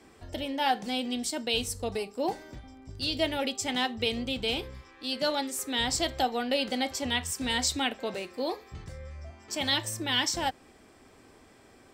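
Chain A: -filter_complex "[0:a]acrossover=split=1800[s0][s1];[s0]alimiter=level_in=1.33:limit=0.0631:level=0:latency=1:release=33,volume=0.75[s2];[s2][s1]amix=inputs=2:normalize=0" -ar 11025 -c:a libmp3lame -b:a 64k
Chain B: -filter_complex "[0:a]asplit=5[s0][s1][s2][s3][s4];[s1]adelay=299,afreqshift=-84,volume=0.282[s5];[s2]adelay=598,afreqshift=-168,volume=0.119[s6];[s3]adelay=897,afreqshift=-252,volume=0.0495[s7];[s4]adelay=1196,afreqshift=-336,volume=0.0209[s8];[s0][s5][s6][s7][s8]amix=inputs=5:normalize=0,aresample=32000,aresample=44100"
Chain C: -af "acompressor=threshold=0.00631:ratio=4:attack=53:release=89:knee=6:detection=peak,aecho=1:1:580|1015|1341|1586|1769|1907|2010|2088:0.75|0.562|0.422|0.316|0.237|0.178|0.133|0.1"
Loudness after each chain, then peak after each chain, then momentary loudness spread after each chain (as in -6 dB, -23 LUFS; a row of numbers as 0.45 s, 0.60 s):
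-32.0 LUFS, -29.5 LUFS, -37.0 LUFS; -14.0 dBFS, -13.5 dBFS, -22.0 dBFS; 15 LU, 15 LU, 4 LU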